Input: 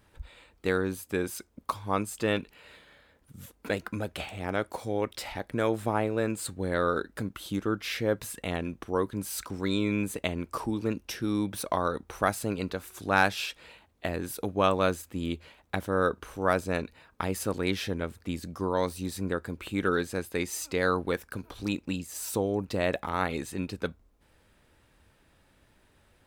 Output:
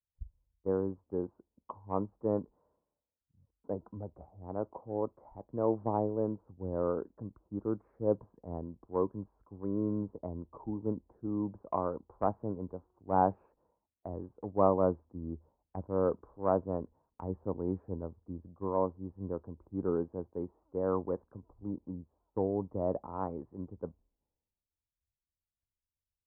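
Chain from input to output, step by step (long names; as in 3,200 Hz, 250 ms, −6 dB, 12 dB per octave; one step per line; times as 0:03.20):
elliptic low-pass filter 1,000 Hz, stop band 70 dB
pitch vibrato 0.44 Hz 43 cents
multiband upward and downward expander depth 100%
level −4.5 dB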